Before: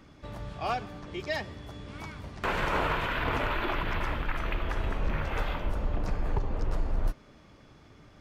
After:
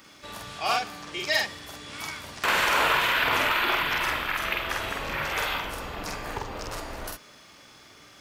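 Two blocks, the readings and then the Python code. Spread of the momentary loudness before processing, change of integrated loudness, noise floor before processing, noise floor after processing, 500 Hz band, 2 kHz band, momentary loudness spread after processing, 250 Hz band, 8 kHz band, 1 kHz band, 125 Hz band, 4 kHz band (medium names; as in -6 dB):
13 LU, +6.5 dB, -56 dBFS, -52 dBFS, +2.0 dB, +9.0 dB, 16 LU, -2.0 dB, no reading, +6.0 dB, -8.0 dB, +12.5 dB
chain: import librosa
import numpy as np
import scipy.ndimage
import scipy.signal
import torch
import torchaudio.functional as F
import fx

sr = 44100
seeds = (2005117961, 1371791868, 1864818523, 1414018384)

y = fx.tilt_eq(x, sr, slope=4.0)
y = fx.doubler(y, sr, ms=47.0, db=-2)
y = y * librosa.db_to_amplitude(3.5)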